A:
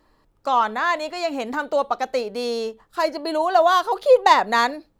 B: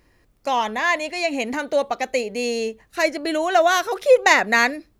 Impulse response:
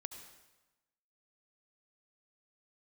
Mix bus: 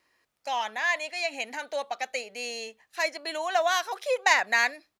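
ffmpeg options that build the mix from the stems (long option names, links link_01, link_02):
-filter_complex "[0:a]volume=-11.5dB[link_01];[1:a]adelay=1.1,volume=-3.5dB[link_02];[link_01][link_02]amix=inputs=2:normalize=0,highpass=frequency=1500:poles=1,highshelf=frequency=9700:gain=-6.5"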